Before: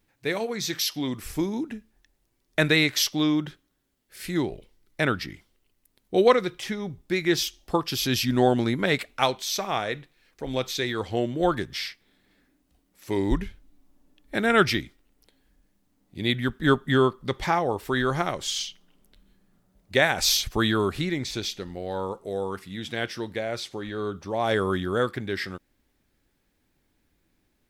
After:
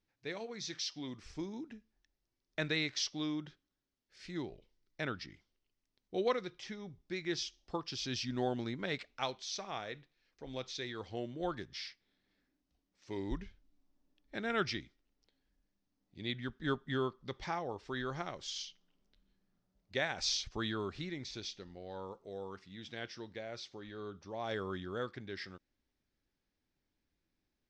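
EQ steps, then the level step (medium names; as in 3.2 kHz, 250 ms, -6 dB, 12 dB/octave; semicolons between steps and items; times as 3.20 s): four-pole ladder low-pass 6.6 kHz, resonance 45%; distance through air 51 m; -5.5 dB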